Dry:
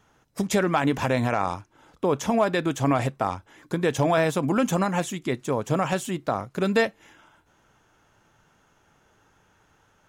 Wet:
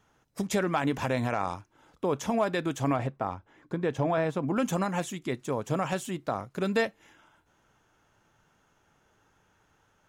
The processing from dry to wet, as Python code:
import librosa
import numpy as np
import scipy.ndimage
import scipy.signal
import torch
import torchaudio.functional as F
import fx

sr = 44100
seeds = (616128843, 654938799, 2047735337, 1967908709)

y = fx.lowpass(x, sr, hz=1700.0, slope=6, at=(2.95, 4.56), fade=0.02)
y = y * 10.0 ** (-5.0 / 20.0)